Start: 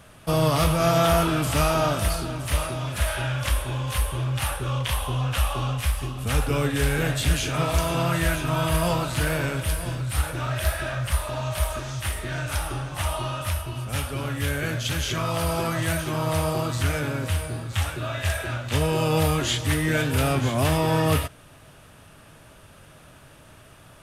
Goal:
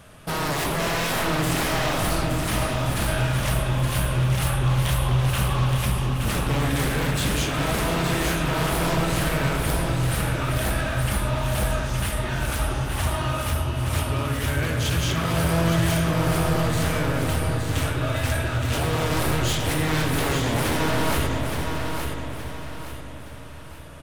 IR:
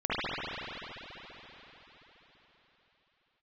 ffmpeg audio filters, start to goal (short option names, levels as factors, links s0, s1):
-filter_complex "[0:a]aeval=exprs='0.0794*(abs(mod(val(0)/0.0794+3,4)-2)-1)':c=same,aecho=1:1:870|1740|2610|3480:0.501|0.185|0.0686|0.0254,asplit=2[s0][s1];[1:a]atrim=start_sample=2205,lowshelf=f=470:g=7[s2];[s1][s2]afir=irnorm=-1:irlink=0,volume=0.112[s3];[s0][s3]amix=inputs=2:normalize=0"